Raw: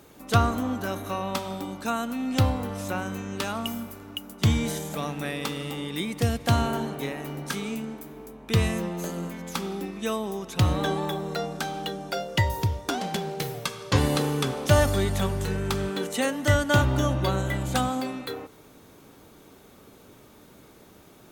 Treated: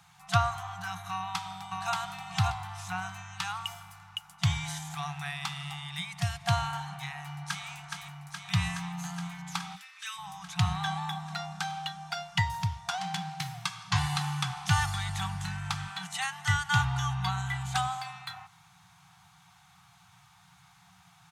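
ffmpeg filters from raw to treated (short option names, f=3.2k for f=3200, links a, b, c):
-filter_complex "[0:a]asplit=2[a][b];[b]afade=t=in:st=1.13:d=0.01,afade=t=out:st=1.92:d=0.01,aecho=0:1:580|1160|1740|2320:0.841395|0.210349|0.0525872|0.0131468[c];[a][c]amix=inputs=2:normalize=0,asplit=2[d][e];[e]afade=t=in:st=7.18:d=0.01,afade=t=out:st=7.66:d=0.01,aecho=0:1:420|840|1260|1680|2100|2520|2940|3360|3780|4200|4620|5040:0.595662|0.47653|0.381224|0.304979|0.243983|0.195187|0.156149|0.124919|0.0999355|0.0799484|0.0639587|0.051167[f];[d][f]amix=inputs=2:normalize=0,asplit=3[g][h][i];[g]afade=t=out:st=9.75:d=0.02[j];[h]highpass=f=1.4k:w=0.5412,highpass=f=1.4k:w=1.3066,afade=t=in:st=9.75:d=0.02,afade=t=out:st=10.17:d=0.02[k];[i]afade=t=in:st=10.17:d=0.02[l];[j][k][l]amix=inputs=3:normalize=0,lowpass=8.5k,afftfilt=real='re*(1-between(b*sr/4096,190,690))':imag='im*(1-between(b*sr/4096,190,690))':win_size=4096:overlap=0.75,highpass=110,volume=-2dB"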